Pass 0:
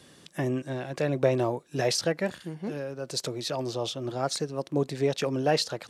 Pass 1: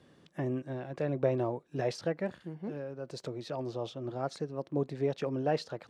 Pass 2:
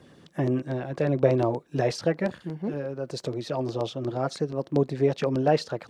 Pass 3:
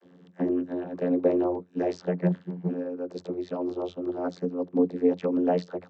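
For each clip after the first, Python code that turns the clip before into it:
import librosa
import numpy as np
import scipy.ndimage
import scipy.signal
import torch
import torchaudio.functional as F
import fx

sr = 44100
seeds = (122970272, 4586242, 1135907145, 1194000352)

y1 = fx.lowpass(x, sr, hz=1300.0, slope=6)
y1 = F.gain(torch.from_numpy(y1), -4.5).numpy()
y2 = fx.filter_lfo_notch(y1, sr, shape='saw_down', hz=8.4, low_hz=300.0, high_hz=4400.0, q=2.4)
y2 = F.gain(torch.from_numpy(y2), 8.5).numpy()
y3 = fx.vocoder(y2, sr, bands=32, carrier='saw', carrier_hz=89.1)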